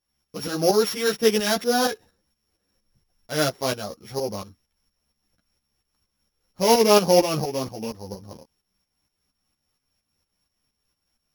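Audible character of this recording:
a buzz of ramps at a fixed pitch in blocks of 8 samples
tremolo saw up 4.3 Hz, depth 70%
a shimmering, thickened sound

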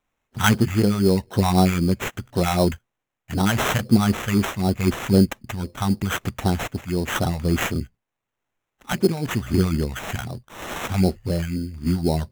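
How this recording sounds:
tremolo triangle 0.84 Hz, depth 45%
phaser sweep stages 2, 3.9 Hz, lowest notch 320–2,600 Hz
aliases and images of a low sample rate 4,700 Hz, jitter 0%

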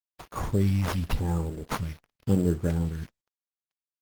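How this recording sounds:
a quantiser's noise floor 8 bits, dither none
phaser sweep stages 2, 0.87 Hz, lowest notch 380–3,800 Hz
aliases and images of a low sample rate 7,900 Hz, jitter 0%
Opus

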